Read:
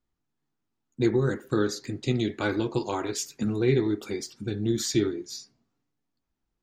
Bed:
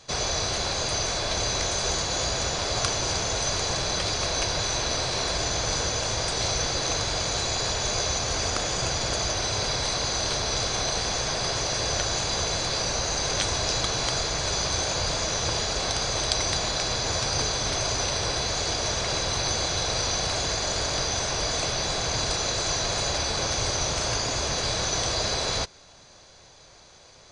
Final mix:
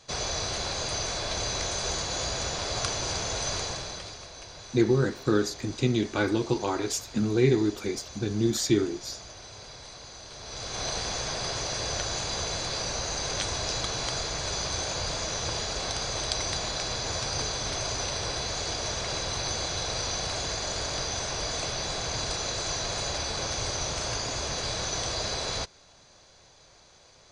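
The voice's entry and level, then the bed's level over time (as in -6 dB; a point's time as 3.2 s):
3.75 s, +1.0 dB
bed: 3.58 s -4 dB
4.29 s -18 dB
10.3 s -18 dB
10.86 s -4.5 dB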